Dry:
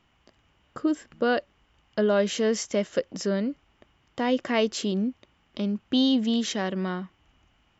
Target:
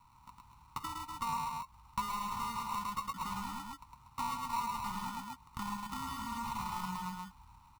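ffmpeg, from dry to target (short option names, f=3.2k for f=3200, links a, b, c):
-filter_complex "[0:a]bandreject=f=580:w=12,asplit=2[a][b];[b]aeval=exprs='(mod(16.8*val(0)+1,2)-1)/16.8':c=same,volume=-4dB[c];[a][c]amix=inputs=2:normalize=0,acrusher=samples=27:mix=1:aa=0.000001,highshelf=f=2.6k:g=9.5,aecho=1:1:107.9|239.1:0.794|0.355,acompressor=threshold=-32dB:ratio=6,firequalizer=gain_entry='entry(110,0);entry(240,-9);entry(390,-25);entry(640,-25);entry(920,13);entry(1700,-9);entry(2400,-6);entry(6800,-9)':delay=0.05:min_phase=1,volume=-2dB"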